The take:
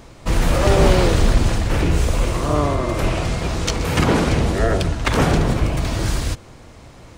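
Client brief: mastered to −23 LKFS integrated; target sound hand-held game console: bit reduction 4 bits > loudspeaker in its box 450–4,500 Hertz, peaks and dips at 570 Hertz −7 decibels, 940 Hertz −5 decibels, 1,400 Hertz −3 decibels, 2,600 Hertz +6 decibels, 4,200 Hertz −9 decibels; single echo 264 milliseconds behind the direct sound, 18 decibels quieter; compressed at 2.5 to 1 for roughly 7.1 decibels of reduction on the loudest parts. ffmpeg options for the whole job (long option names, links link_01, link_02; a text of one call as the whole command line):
ffmpeg -i in.wav -af "acompressor=threshold=-20dB:ratio=2.5,aecho=1:1:264:0.126,acrusher=bits=3:mix=0:aa=0.000001,highpass=450,equalizer=frequency=570:width_type=q:width=4:gain=-7,equalizer=frequency=940:width_type=q:width=4:gain=-5,equalizer=frequency=1400:width_type=q:width=4:gain=-3,equalizer=frequency=2600:width_type=q:width=4:gain=6,equalizer=frequency=4200:width_type=q:width=4:gain=-9,lowpass=frequency=4500:width=0.5412,lowpass=frequency=4500:width=1.3066,volume=4dB" out.wav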